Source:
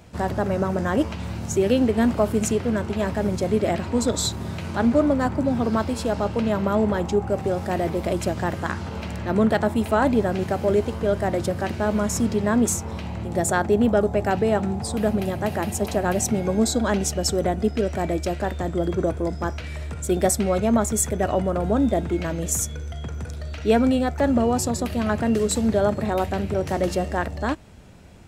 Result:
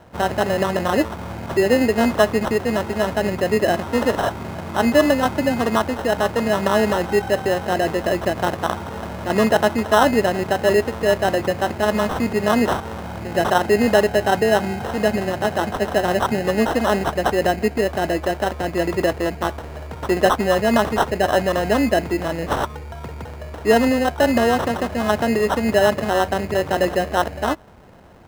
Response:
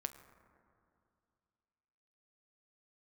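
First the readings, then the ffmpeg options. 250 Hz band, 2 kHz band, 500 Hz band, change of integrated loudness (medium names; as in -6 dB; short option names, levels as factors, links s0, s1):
+0.5 dB, +8.5 dB, +4.5 dB, +3.5 dB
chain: -af "acrusher=samples=19:mix=1:aa=0.000001,equalizer=f=830:w=0.41:g=10.5,volume=0.668"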